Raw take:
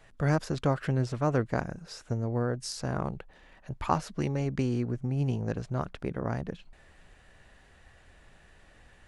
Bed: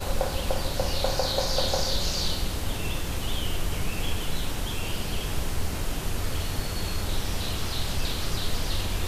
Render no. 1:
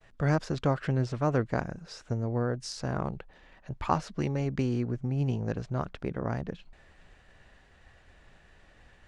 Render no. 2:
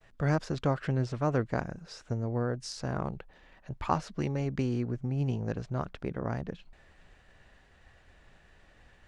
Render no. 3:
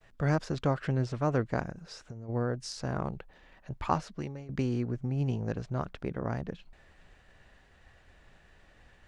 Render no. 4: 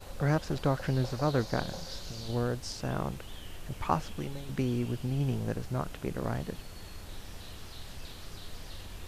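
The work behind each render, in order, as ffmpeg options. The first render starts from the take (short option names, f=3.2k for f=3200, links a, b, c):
-af "lowpass=6.9k,agate=range=-33dB:threshold=-55dB:ratio=3:detection=peak"
-af "volume=-1.5dB"
-filter_complex "[0:a]asplit=3[a][b][c];[a]afade=t=out:st=1.71:d=0.02[d];[b]acompressor=threshold=-38dB:ratio=10:attack=3.2:release=140:knee=1:detection=peak,afade=t=in:st=1.71:d=0.02,afade=t=out:st=2.28:d=0.02[e];[c]afade=t=in:st=2.28:d=0.02[f];[d][e][f]amix=inputs=3:normalize=0,asplit=2[g][h];[g]atrim=end=4.49,asetpts=PTS-STARTPTS,afade=t=out:st=3.95:d=0.54:silence=0.112202[i];[h]atrim=start=4.49,asetpts=PTS-STARTPTS,afade=t=in:d=0.004:c=hsin:silence=0.112202[j];[i][j]concat=n=2:v=0:a=1"
-filter_complex "[1:a]volume=-16dB[a];[0:a][a]amix=inputs=2:normalize=0"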